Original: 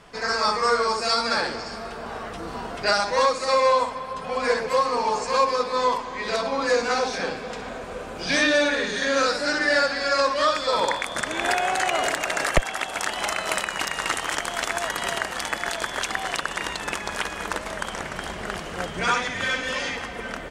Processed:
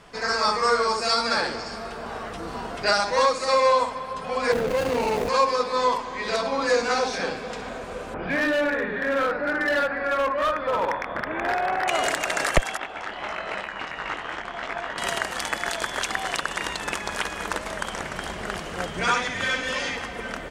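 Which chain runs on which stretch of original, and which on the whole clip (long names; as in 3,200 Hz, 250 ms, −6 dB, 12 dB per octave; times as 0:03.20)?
0:04.52–0:05.29: running median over 41 samples + envelope flattener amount 70%
0:08.14–0:11.88: low-pass filter 2,100 Hz 24 dB per octave + upward compression, threshold −25 dBFS + hard clipping −19 dBFS
0:12.77–0:14.98: low-pass filter 2,600 Hz + hard clipping −14 dBFS + micro pitch shift up and down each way 52 cents
whole clip: no processing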